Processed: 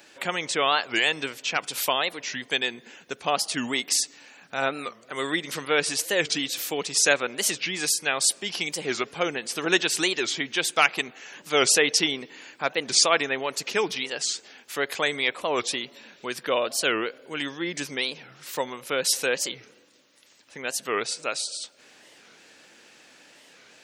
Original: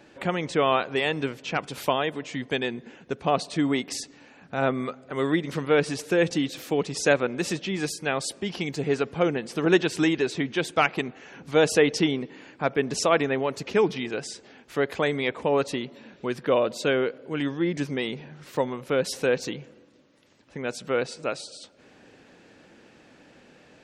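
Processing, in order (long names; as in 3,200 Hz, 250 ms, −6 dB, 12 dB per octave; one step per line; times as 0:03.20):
spectral tilt +4 dB per octave
wow of a warped record 45 rpm, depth 250 cents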